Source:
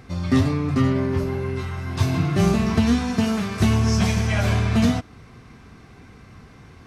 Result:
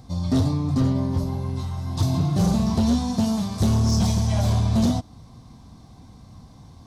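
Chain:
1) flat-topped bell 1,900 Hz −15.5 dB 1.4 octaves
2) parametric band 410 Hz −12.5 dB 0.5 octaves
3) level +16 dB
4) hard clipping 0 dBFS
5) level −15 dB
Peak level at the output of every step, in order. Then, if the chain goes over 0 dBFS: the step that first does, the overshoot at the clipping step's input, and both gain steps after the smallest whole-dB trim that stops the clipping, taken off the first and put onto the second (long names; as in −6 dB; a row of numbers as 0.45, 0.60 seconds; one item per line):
−8.5, −8.0, +8.0, 0.0, −15.0 dBFS
step 3, 8.0 dB
step 3 +8 dB, step 5 −7 dB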